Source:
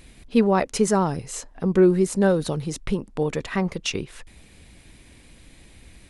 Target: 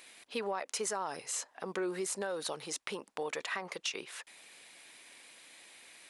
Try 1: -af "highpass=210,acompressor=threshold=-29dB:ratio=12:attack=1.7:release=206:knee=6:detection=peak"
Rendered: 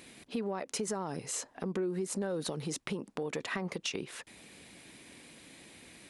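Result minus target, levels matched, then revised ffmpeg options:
250 Hz band +6.5 dB
-af "highpass=720,acompressor=threshold=-29dB:ratio=12:attack=1.7:release=206:knee=6:detection=peak"

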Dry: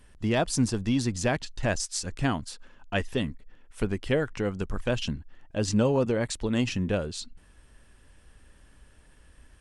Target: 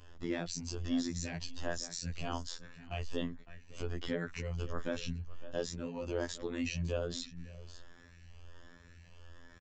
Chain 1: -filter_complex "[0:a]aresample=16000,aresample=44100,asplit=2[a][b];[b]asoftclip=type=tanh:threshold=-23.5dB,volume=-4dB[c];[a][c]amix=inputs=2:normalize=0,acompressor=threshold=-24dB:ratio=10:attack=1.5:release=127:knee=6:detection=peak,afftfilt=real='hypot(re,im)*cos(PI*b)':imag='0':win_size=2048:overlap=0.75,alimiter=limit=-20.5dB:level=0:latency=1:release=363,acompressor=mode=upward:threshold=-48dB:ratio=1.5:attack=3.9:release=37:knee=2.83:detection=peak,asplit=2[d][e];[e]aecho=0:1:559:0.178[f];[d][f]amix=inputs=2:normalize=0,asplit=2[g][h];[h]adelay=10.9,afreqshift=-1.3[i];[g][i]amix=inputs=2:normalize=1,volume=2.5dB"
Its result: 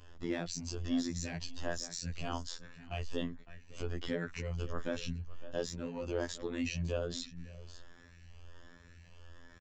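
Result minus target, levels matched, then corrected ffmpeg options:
soft clip: distortion +15 dB
-filter_complex "[0:a]aresample=16000,aresample=44100,asplit=2[a][b];[b]asoftclip=type=tanh:threshold=-12.5dB,volume=-4dB[c];[a][c]amix=inputs=2:normalize=0,acompressor=threshold=-24dB:ratio=10:attack=1.5:release=127:knee=6:detection=peak,afftfilt=real='hypot(re,im)*cos(PI*b)':imag='0':win_size=2048:overlap=0.75,alimiter=limit=-20.5dB:level=0:latency=1:release=363,acompressor=mode=upward:threshold=-48dB:ratio=1.5:attack=3.9:release=37:knee=2.83:detection=peak,asplit=2[d][e];[e]aecho=0:1:559:0.178[f];[d][f]amix=inputs=2:normalize=0,asplit=2[g][h];[h]adelay=10.9,afreqshift=-1.3[i];[g][i]amix=inputs=2:normalize=1,volume=2.5dB"

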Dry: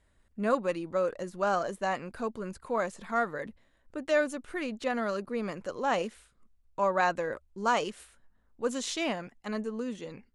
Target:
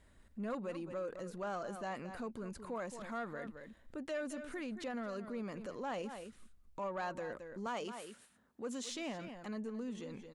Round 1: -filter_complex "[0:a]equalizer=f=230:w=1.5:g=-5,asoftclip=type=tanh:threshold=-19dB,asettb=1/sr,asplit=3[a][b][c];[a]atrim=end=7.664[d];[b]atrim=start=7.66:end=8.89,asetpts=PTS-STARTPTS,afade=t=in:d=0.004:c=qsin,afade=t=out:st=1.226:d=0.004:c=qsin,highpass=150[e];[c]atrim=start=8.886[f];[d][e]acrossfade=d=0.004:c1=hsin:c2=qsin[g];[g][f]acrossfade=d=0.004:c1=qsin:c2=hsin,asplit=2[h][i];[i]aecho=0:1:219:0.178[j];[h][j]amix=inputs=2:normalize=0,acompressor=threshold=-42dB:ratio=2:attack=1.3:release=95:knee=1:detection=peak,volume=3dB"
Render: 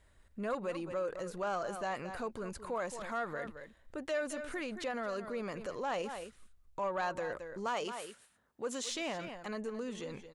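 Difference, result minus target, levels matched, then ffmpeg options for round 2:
compressor: peak gain reduction -5 dB; 250 Hz band -4.0 dB
-filter_complex "[0:a]equalizer=f=230:w=1.5:g=4,asoftclip=type=tanh:threshold=-19dB,asettb=1/sr,asplit=3[a][b][c];[a]atrim=end=7.664[d];[b]atrim=start=7.66:end=8.89,asetpts=PTS-STARTPTS,afade=t=in:d=0.004:c=qsin,afade=t=out:st=1.226:d=0.004:c=qsin,highpass=150[e];[c]atrim=start=8.886[f];[d][e]acrossfade=d=0.004:c1=hsin:c2=qsin[g];[g][f]acrossfade=d=0.004:c1=qsin:c2=hsin,asplit=2[h][i];[i]aecho=0:1:219:0.178[j];[h][j]amix=inputs=2:normalize=0,acompressor=threshold=-52dB:ratio=2:attack=1.3:release=95:knee=1:detection=peak,volume=3dB"

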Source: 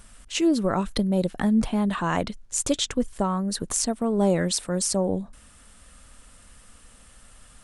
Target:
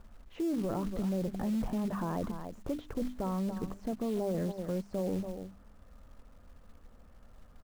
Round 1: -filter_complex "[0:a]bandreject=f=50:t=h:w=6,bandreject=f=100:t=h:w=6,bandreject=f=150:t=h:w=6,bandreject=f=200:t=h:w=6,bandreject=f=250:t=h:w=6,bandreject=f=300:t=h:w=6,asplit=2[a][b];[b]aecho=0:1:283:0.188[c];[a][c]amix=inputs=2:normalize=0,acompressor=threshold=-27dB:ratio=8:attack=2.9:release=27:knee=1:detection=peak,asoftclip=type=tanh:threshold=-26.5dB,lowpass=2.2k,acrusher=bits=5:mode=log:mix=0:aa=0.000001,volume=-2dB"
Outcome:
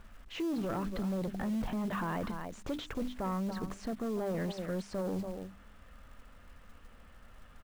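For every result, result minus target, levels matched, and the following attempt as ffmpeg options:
2000 Hz band +9.0 dB; soft clip: distortion +10 dB
-filter_complex "[0:a]bandreject=f=50:t=h:w=6,bandreject=f=100:t=h:w=6,bandreject=f=150:t=h:w=6,bandreject=f=200:t=h:w=6,bandreject=f=250:t=h:w=6,bandreject=f=300:t=h:w=6,asplit=2[a][b];[b]aecho=0:1:283:0.188[c];[a][c]amix=inputs=2:normalize=0,acompressor=threshold=-27dB:ratio=8:attack=2.9:release=27:knee=1:detection=peak,asoftclip=type=tanh:threshold=-26.5dB,lowpass=880,acrusher=bits=5:mode=log:mix=0:aa=0.000001,volume=-2dB"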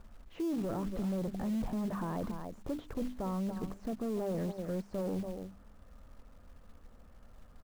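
soft clip: distortion +10 dB
-filter_complex "[0:a]bandreject=f=50:t=h:w=6,bandreject=f=100:t=h:w=6,bandreject=f=150:t=h:w=6,bandreject=f=200:t=h:w=6,bandreject=f=250:t=h:w=6,bandreject=f=300:t=h:w=6,asplit=2[a][b];[b]aecho=0:1:283:0.188[c];[a][c]amix=inputs=2:normalize=0,acompressor=threshold=-27dB:ratio=8:attack=2.9:release=27:knee=1:detection=peak,asoftclip=type=tanh:threshold=-19dB,lowpass=880,acrusher=bits=5:mode=log:mix=0:aa=0.000001,volume=-2dB"

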